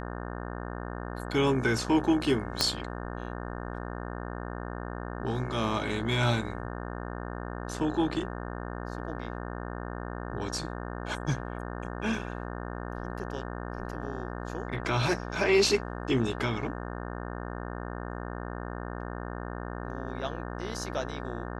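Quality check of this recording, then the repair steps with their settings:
mains buzz 60 Hz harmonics 30 −37 dBFS
0:02.61: click −9 dBFS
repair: click removal
hum removal 60 Hz, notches 30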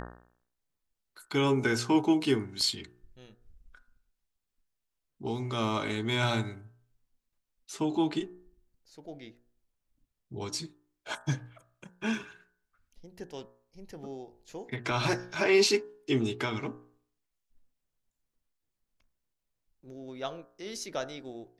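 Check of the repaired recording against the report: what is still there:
0:02.61: click

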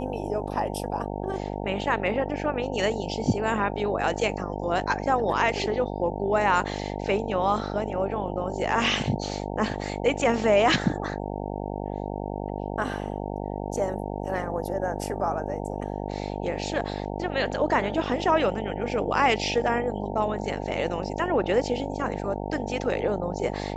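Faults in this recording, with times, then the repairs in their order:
mains buzz 50 Hz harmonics 18 −32 dBFS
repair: hum removal 50 Hz, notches 18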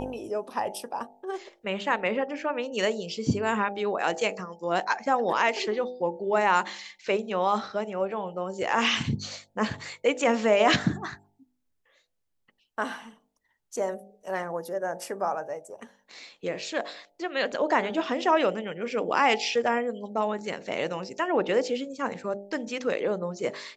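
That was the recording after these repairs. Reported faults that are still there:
none of them is left

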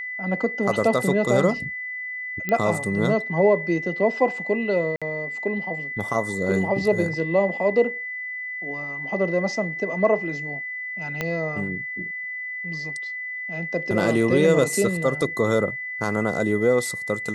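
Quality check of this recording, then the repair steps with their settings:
whistle 2,000 Hz −29 dBFS
0:02.49: click −12 dBFS
0:04.96–0:05.02: drop-out 56 ms
0:11.21: click −11 dBFS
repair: click removal
notch filter 2,000 Hz, Q 30
repair the gap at 0:04.96, 56 ms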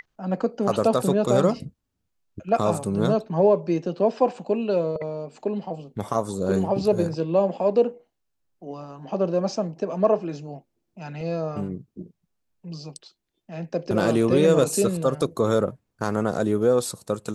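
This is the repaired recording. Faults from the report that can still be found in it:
0:11.21: click

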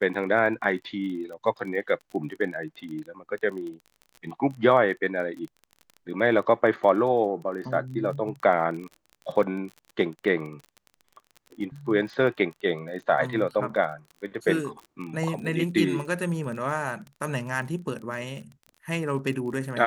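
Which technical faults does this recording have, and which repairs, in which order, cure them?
surface crackle 28 per second −35 dBFS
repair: click removal

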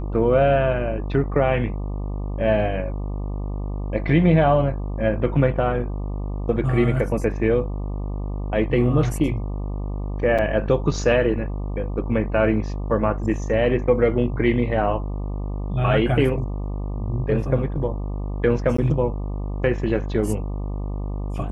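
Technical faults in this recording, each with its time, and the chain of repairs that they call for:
mains buzz 50 Hz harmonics 24 −27 dBFS
0:10.38–0:10.39: drop-out 6.3 ms
0:18.77–0:18.78: drop-out 14 ms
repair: hum removal 50 Hz, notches 24
repair the gap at 0:10.38, 6.3 ms
repair the gap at 0:18.77, 14 ms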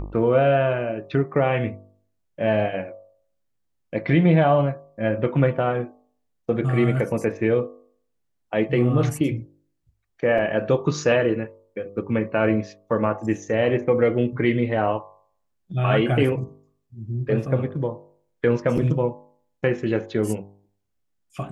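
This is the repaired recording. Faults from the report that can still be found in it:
none of them is left

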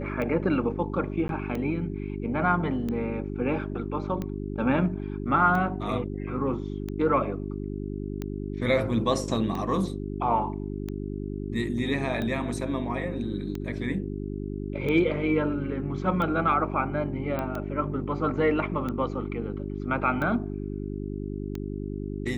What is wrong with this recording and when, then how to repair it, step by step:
mains hum 50 Hz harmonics 8 −33 dBFS
scratch tick 45 rpm −20 dBFS
0:01.28–0:01.29: drop-out 12 ms
0:17.39: click −18 dBFS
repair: click removal
hum removal 50 Hz, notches 8
repair the gap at 0:01.28, 12 ms

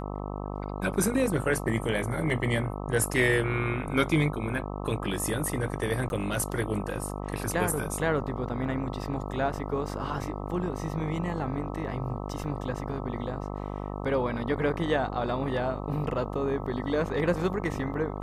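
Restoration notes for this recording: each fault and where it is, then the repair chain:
mains buzz 50 Hz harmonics 26 −35 dBFS
0:06.09–0:06.10: drop-out 11 ms
0:12.44: drop-out 2.9 ms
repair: hum removal 50 Hz, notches 26
repair the gap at 0:06.09, 11 ms
repair the gap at 0:12.44, 2.9 ms

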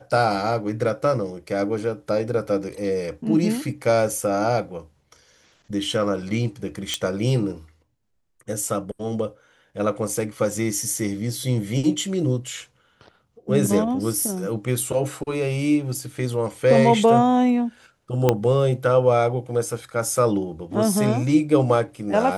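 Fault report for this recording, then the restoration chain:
0:06.94: click −9 dBFS
0:18.29: click −4 dBFS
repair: click removal

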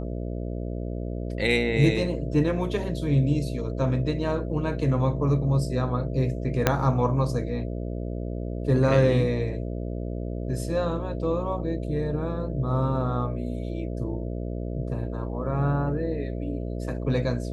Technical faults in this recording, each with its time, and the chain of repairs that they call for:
mains buzz 60 Hz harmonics 11 −31 dBFS
0:06.67: click −4 dBFS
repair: click removal
hum removal 60 Hz, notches 11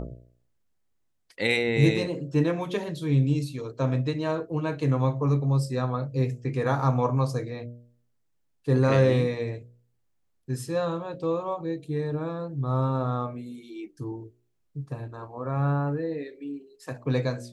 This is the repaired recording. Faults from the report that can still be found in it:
0:06.67: click

